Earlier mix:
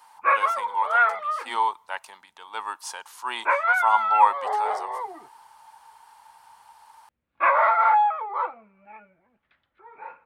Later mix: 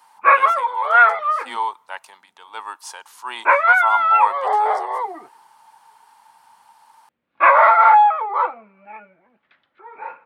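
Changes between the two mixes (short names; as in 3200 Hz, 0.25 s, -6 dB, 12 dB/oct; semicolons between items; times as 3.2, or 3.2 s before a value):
background +7.5 dB; master: add HPF 190 Hz 12 dB/oct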